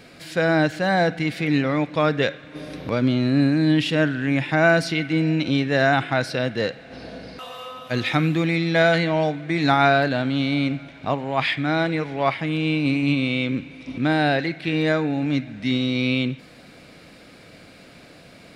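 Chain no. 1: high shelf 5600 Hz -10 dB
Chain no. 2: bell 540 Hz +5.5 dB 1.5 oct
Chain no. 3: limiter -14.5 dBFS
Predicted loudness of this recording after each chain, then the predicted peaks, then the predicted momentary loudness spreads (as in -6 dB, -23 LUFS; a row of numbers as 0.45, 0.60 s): -22.0, -19.0, -24.5 LUFS; -5.5, -2.5, -14.5 dBFS; 11, 11, 9 LU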